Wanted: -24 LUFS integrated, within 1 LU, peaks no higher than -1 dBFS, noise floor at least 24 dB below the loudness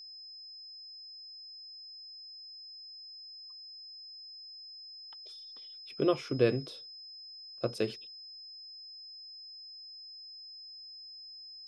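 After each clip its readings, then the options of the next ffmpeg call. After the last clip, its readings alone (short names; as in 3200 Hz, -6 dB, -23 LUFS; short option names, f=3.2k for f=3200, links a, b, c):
steady tone 5100 Hz; tone level -46 dBFS; loudness -39.5 LUFS; peak -14.0 dBFS; loudness target -24.0 LUFS
-> -af "bandreject=f=5.1k:w=30"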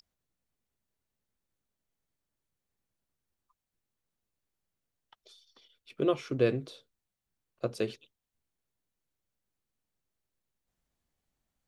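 steady tone none; loudness -32.0 LUFS; peak -14.0 dBFS; loudness target -24.0 LUFS
-> -af "volume=8dB"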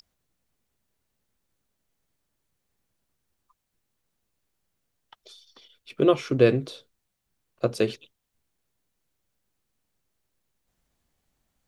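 loudness -24.0 LUFS; peak -6.0 dBFS; noise floor -80 dBFS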